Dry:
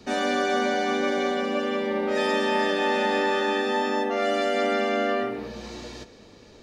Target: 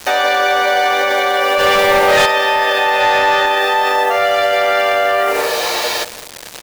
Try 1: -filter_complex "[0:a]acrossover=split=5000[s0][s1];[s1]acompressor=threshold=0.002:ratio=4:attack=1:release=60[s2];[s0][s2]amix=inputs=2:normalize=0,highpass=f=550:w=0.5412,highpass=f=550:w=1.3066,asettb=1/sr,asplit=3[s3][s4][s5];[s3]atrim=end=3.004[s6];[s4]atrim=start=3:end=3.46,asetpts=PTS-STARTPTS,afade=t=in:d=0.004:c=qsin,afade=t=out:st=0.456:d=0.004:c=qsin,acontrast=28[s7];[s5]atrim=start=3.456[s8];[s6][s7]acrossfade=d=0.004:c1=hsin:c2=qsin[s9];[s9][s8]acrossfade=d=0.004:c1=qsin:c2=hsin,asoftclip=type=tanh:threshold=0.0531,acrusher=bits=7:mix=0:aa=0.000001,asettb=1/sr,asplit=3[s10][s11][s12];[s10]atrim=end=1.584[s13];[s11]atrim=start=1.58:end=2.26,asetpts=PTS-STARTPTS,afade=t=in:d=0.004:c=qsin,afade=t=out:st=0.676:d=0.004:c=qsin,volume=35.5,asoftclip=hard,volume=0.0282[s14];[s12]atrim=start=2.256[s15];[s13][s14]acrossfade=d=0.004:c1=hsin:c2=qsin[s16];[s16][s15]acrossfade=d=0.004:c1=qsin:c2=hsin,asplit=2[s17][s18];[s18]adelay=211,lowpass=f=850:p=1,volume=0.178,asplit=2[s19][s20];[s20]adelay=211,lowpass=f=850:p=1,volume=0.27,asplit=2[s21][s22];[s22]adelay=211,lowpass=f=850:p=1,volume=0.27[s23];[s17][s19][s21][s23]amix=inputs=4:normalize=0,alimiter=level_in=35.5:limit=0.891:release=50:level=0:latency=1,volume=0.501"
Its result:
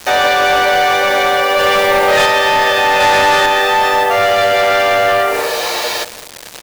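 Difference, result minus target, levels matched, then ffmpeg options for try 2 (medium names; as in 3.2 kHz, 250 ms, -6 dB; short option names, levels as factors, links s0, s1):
saturation: distortion +9 dB
-filter_complex "[0:a]acrossover=split=5000[s0][s1];[s1]acompressor=threshold=0.002:ratio=4:attack=1:release=60[s2];[s0][s2]amix=inputs=2:normalize=0,highpass=f=550:w=0.5412,highpass=f=550:w=1.3066,asettb=1/sr,asplit=3[s3][s4][s5];[s3]atrim=end=3.004[s6];[s4]atrim=start=3:end=3.46,asetpts=PTS-STARTPTS,afade=t=in:d=0.004:c=qsin,afade=t=out:st=0.456:d=0.004:c=qsin,acontrast=28[s7];[s5]atrim=start=3.456[s8];[s6][s7]acrossfade=d=0.004:c1=hsin:c2=qsin[s9];[s9][s8]acrossfade=d=0.004:c1=qsin:c2=hsin,asoftclip=type=tanh:threshold=0.141,acrusher=bits=7:mix=0:aa=0.000001,asettb=1/sr,asplit=3[s10][s11][s12];[s10]atrim=end=1.584[s13];[s11]atrim=start=1.58:end=2.26,asetpts=PTS-STARTPTS,afade=t=in:d=0.004:c=qsin,afade=t=out:st=0.676:d=0.004:c=qsin,volume=35.5,asoftclip=hard,volume=0.0282[s14];[s12]atrim=start=2.256[s15];[s13][s14]acrossfade=d=0.004:c1=hsin:c2=qsin[s16];[s16][s15]acrossfade=d=0.004:c1=qsin:c2=hsin,asplit=2[s17][s18];[s18]adelay=211,lowpass=f=850:p=1,volume=0.178,asplit=2[s19][s20];[s20]adelay=211,lowpass=f=850:p=1,volume=0.27,asplit=2[s21][s22];[s22]adelay=211,lowpass=f=850:p=1,volume=0.27[s23];[s17][s19][s21][s23]amix=inputs=4:normalize=0,alimiter=level_in=35.5:limit=0.891:release=50:level=0:latency=1,volume=0.501"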